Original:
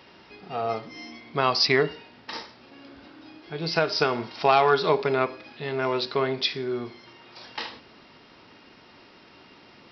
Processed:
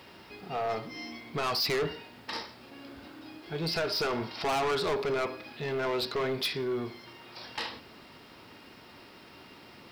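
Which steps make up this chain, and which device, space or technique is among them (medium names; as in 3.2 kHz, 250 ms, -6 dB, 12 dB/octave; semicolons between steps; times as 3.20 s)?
open-reel tape (saturation -26 dBFS, distortion -5 dB; peaking EQ 84 Hz +3.5 dB 1.07 oct; white noise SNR 35 dB)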